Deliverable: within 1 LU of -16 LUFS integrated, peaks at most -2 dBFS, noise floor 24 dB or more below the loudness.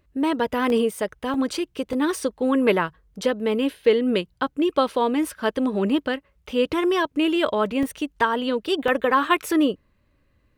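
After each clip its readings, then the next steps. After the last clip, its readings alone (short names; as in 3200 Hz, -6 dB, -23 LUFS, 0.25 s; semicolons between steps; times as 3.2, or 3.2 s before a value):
dropouts 5; longest dropout 1.4 ms; loudness -23.0 LUFS; peak -6.5 dBFS; loudness target -16.0 LUFS
-> interpolate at 0.7/1.34/1.93/7.83/8.88, 1.4 ms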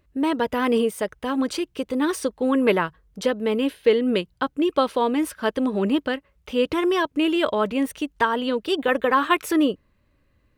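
dropouts 0; loudness -23.0 LUFS; peak -6.5 dBFS; loudness target -16.0 LUFS
-> gain +7 dB; limiter -2 dBFS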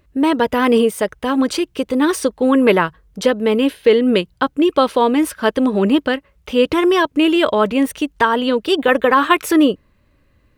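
loudness -16.0 LUFS; peak -2.0 dBFS; noise floor -59 dBFS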